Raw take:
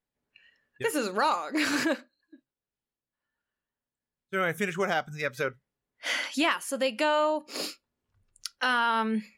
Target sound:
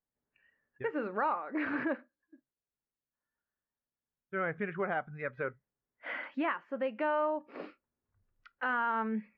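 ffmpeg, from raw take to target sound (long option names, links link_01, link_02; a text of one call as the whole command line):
ffmpeg -i in.wav -af "lowpass=frequency=2000:width=0.5412,lowpass=frequency=2000:width=1.3066,volume=-5.5dB" out.wav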